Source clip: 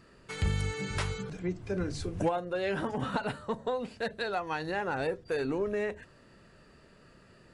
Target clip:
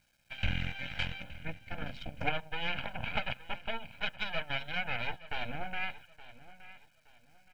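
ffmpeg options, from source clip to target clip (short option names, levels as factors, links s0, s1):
-filter_complex "[0:a]lowshelf=f=400:g=-3.5,asetrate=39289,aresample=44100,atempo=1.12246,aeval=exprs='0.106*(cos(1*acos(clip(val(0)/0.106,-1,1)))-cos(1*PI/2))+0.0335*(cos(3*acos(clip(val(0)/0.106,-1,1)))-cos(3*PI/2))+0.0015*(cos(5*acos(clip(val(0)/0.106,-1,1)))-cos(5*PI/2))+0.0119*(cos(6*acos(clip(val(0)/0.106,-1,1)))-cos(6*PI/2))+0.000596*(cos(8*acos(clip(val(0)/0.106,-1,1)))-cos(8*PI/2))':c=same,lowpass=f=2700:t=q:w=4.3,acrusher=bits=11:mix=0:aa=0.000001,equalizer=f=1000:w=1.2:g=-5,aecho=1:1:1.3:0.91,asplit=2[s0][s1];[s1]aecho=0:1:870|1740|2610:0.141|0.0438|0.0136[s2];[s0][s2]amix=inputs=2:normalize=0,volume=1.12"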